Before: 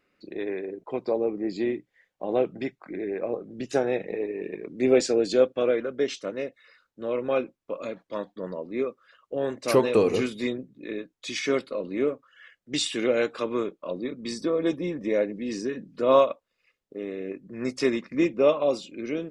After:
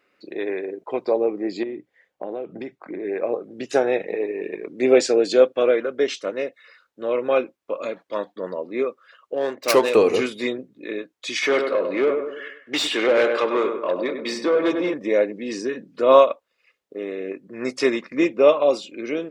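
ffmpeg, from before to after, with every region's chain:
-filter_complex "[0:a]asettb=1/sr,asplit=3[a][b][c];[a]atrim=end=1.634[d];[b]atrim=start=1.63:end=3.05,asetpts=PTS-STARTPTS,afade=t=in:d=0.004:c=qsin,afade=t=out:st=1.416:d=0.004:c=qsin,tiltshelf=f=810:g=4.5,acompressor=threshold=-30dB:ratio=10:attack=3.2:release=140:knee=1:detection=peak[e];[c]atrim=start=3.046[f];[d][e]acrossfade=d=0.004:c1=hsin:c2=qsin[g];[g][f]acrossfade=d=0.004:c1=qsin:c2=hsin,asettb=1/sr,asplit=3[h][i][j];[h]atrim=end=9.344[k];[i]atrim=start=9.34:end=9.95,asetpts=PTS-STARTPTS,afade=t=in:d=0.004:c=qsin,afade=t=out:st=0.606:d=0.004:c=qsin,highpass=f=190:p=1,adynamicsmooth=sensitivity=4.5:basefreq=2.3k,aemphasis=mode=production:type=75fm[l];[j]atrim=start=9.946[m];[k][l]acrossfade=d=0.004:c1=hsin:c2=qsin[n];[n][m]acrossfade=d=0.004:c1=qsin:c2=hsin,asettb=1/sr,asplit=3[o][p][q];[o]atrim=end=11.424[r];[p]atrim=start=11.42:end=14.94,asetpts=PTS-STARTPTS,afade=t=in:d=0.004:c=qsin,afade=t=out:st=3.516:d=0.004:c=qsin,asplit=2[s][t];[t]adelay=99,lowpass=f=1.8k:p=1,volume=-7.5dB,asplit=2[u][v];[v]adelay=99,lowpass=f=1.8k:p=1,volume=0.46,asplit=2[w][x];[x]adelay=99,lowpass=f=1.8k:p=1,volume=0.46,asplit=2[y][z];[z]adelay=99,lowpass=f=1.8k:p=1,volume=0.46,asplit=2[aa][ab];[ab]adelay=99,lowpass=f=1.8k:p=1,volume=0.46[ac];[s][u][w][y][aa][ac]amix=inputs=6:normalize=0,atrim=end_sample=155232,asoftclip=type=hard:threshold=-16.5dB,asplit=2[ad][ae];[ae]highpass=f=720:p=1,volume=14dB,asoftclip=type=tanh:threshold=-16.5dB[af];[ad][af]amix=inputs=2:normalize=0,lowpass=f=2.4k:p=1,volume=-6dB[ag];[q]atrim=start=14.936[ah];[r][ag]acrossfade=d=0.004:c1=hsin:c2=qsin[ai];[ai][ah]acrossfade=d=0.004:c1=qsin:c2=hsin,highpass=45,bass=f=250:g=-12,treble=f=4k:g=-3,volume=6.5dB"

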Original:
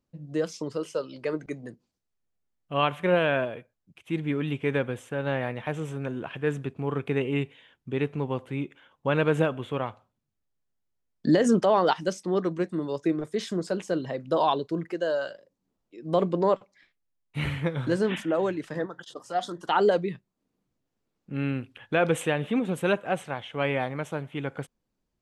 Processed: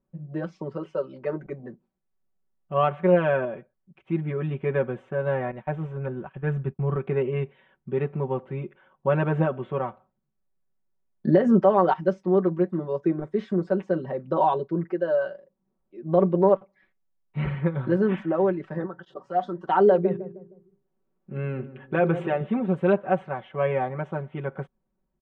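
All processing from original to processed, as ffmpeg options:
-filter_complex "[0:a]asettb=1/sr,asplit=3[a][b][c];[a]atrim=end=5.514[d];[b]atrim=start=5.51:end=6.96,asetpts=PTS-STARTPTS,afade=t=in:d=0.004:c=qsin,afade=t=out:st=1.446:d=0.004:c=qsin,asubboost=boost=7.5:cutoff=150,agate=range=-33dB:threshold=-32dB:ratio=3:release=100:detection=peak[e];[c]atrim=start=6.956[f];[d][e]acrossfade=d=0.004:c1=hsin:c2=qsin[g];[g][f]acrossfade=d=0.004:c1=qsin:c2=hsin,asettb=1/sr,asplit=3[h][i][j];[h]atrim=end=19.884[k];[i]atrim=start=19.88:end=22.41,asetpts=PTS-STARTPTS,afade=t=in:d=0.004:c=qsin,afade=t=out:st=2.526:d=0.004:c=qsin,equalizer=f=380:w=6.9:g=4.5,bandreject=f=50:t=h:w=6,bandreject=f=100:t=h:w=6,bandreject=f=150:t=h:w=6,bandreject=f=200:t=h:w=6,bandreject=f=250:t=h:w=6,bandreject=f=300:t=h:w=6,bandreject=f=350:t=h:w=6,bandreject=f=400:t=h:w=6,asplit=2[l][m];[m]adelay=155,lowpass=f=970:p=1,volume=-12dB,asplit=2[n][o];[o]adelay=155,lowpass=f=970:p=1,volume=0.4,asplit=2[p][q];[q]adelay=155,lowpass=f=970:p=1,volume=0.4,asplit=2[r][s];[s]adelay=155,lowpass=f=970:p=1,volume=0.4[t];[l][n][p][r][t]amix=inputs=5:normalize=0,atrim=end_sample=111573[u];[j]atrim=start=22.406[v];[k][u]acrossfade=d=0.004:c1=hsin:c2=qsin[w];[w][v]acrossfade=d=0.004:c1=qsin:c2=hsin,lowpass=1.4k,aecho=1:1:5.3:0.92"

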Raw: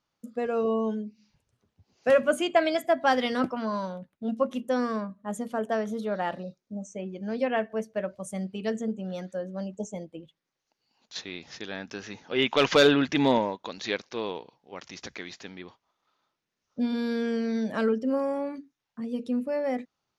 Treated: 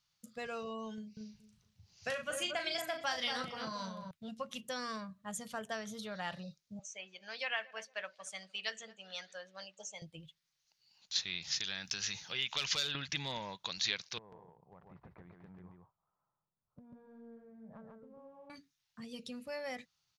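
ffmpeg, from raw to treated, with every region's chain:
-filter_complex "[0:a]asettb=1/sr,asplit=3[a][b][c];[a]atrim=end=0.944[d];[b]atrim=start=0.94:end=4.11,asetpts=PTS-STARTPTS,afade=t=in:d=0.004:c=qsin,afade=t=out:st=3.166:d=0.004:c=qsin,equalizer=f=5.8k:w=6.4:g=3,asplit=2[e][f];[f]adelay=37,volume=-6dB[g];[e][g]amix=inputs=2:normalize=0,atrim=end_sample=139797,asplit=2[h][i];[i]adelay=228,lowpass=f=850:p=1,volume=-4.5dB,asplit=2[j][k];[k]adelay=228,lowpass=f=850:p=1,volume=0.15,asplit=2[l][m];[m]adelay=228,lowpass=f=850:p=1,volume=0.15[n];[h][j][l][n]amix=inputs=4:normalize=0,atrim=end_sample=139797[o];[c]atrim=start=4.106[p];[d][o]acrossfade=d=0.004:c1=hsin:c2=qsin[q];[q][p]acrossfade=d=0.004:c1=qsin:c2=hsin,asettb=1/sr,asplit=3[r][s][t];[r]atrim=end=6.794[u];[s]atrim=start=6.79:end=10.02,asetpts=PTS-STARTPTS,afade=t=in:d=0.004:c=qsin,afade=t=out:st=3.226:d=0.004:c=qsin,highpass=520,lowpass=4.1k,tiltshelf=f=770:g=-5,asplit=2[v][w];[w]adelay=228,lowpass=f=1.1k:p=1,volume=-18.5dB,asplit=2[x][y];[y]adelay=228,lowpass=f=1.1k:p=1,volume=0.37,asplit=2[z][aa];[aa]adelay=228,lowpass=f=1.1k:p=1,volume=0.37[ab];[v][x][z][ab]amix=inputs=4:normalize=0,atrim=end_sample=142443[ac];[t]atrim=start=10.016[ad];[u][ac]acrossfade=d=0.004:c1=hsin:c2=qsin[ae];[ae][ad]acrossfade=d=0.004:c1=qsin:c2=hsin,asettb=1/sr,asplit=3[af][ag][ah];[af]atrim=end=11.444[ai];[ag]atrim=start=11.44:end=12.95,asetpts=PTS-STARTPTS,afade=t=in:d=0.004:c=qsin,afade=t=out:st=1.506:d=0.004:c=qsin,highshelf=f=3.1k:g=8.5,acompressor=threshold=-34dB:ratio=2.5:attack=3.2:release=140:knee=1:detection=peak[aj];[ah]atrim=start=12.946[ak];[ai][aj]acrossfade=d=0.004:c1=hsin:c2=qsin[al];[al][ak]acrossfade=d=0.004:c1=qsin:c2=hsin,asettb=1/sr,asplit=3[am][an][ao];[am]atrim=end=14.184[ap];[an]atrim=start=14.18:end=18.5,asetpts=PTS-STARTPTS,afade=t=in:d=0.004:c=qsin,afade=t=out:st=4.316:d=0.004:c=qsin,lowpass=f=1k:w=0.5412,lowpass=f=1k:w=1.3066,acompressor=threshold=-40dB:ratio=12:attack=3.2:release=140:knee=1:detection=peak,aecho=1:1:142:0.708,atrim=end_sample=190512[aq];[ao]atrim=start=18.496[ar];[ap][aq]acrossfade=d=0.004:c1=hsin:c2=qsin[as];[as][ar]acrossfade=d=0.004:c1=qsin:c2=hsin,firequalizer=gain_entry='entry(160,0);entry(250,-18);entry(4300,-7);entry(9400,-11)':delay=0.05:min_phase=1,acompressor=threshold=-42dB:ratio=6,tiltshelf=f=670:g=-8,volume=6dB"

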